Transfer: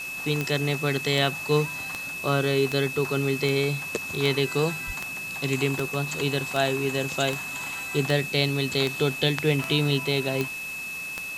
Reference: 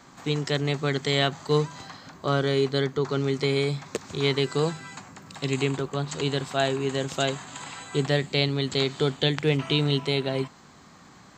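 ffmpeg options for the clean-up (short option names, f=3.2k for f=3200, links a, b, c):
-filter_complex "[0:a]adeclick=t=4,bandreject=f=2.6k:w=30,asplit=3[a][b][c];[a]afade=t=out:st=4.86:d=0.02[d];[b]highpass=f=140:w=0.5412,highpass=f=140:w=1.3066,afade=t=in:st=4.86:d=0.02,afade=t=out:st=4.98:d=0.02[e];[c]afade=t=in:st=4.98:d=0.02[f];[d][e][f]amix=inputs=3:normalize=0,afwtdn=0.0079"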